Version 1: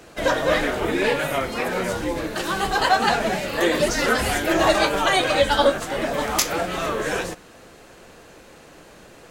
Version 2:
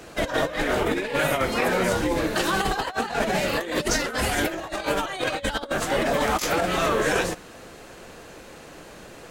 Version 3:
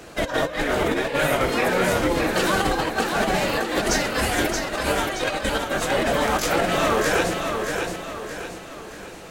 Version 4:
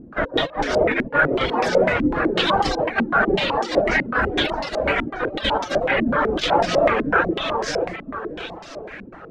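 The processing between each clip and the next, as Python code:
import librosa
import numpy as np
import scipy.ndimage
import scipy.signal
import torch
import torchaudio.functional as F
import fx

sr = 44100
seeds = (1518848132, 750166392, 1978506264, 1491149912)

y1 = fx.over_compress(x, sr, threshold_db=-24.0, ratio=-0.5)
y2 = fx.echo_feedback(y1, sr, ms=625, feedback_pct=43, wet_db=-5.0)
y2 = y2 * librosa.db_to_amplitude(1.0)
y3 = fx.dereverb_blind(y2, sr, rt60_s=0.56)
y3 = fx.vibrato(y3, sr, rate_hz=2.8, depth_cents=38.0)
y3 = fx.filter_held_lowpass(y3, sr, hz=8.0, low_hz=250.0, high_hz=5300.0)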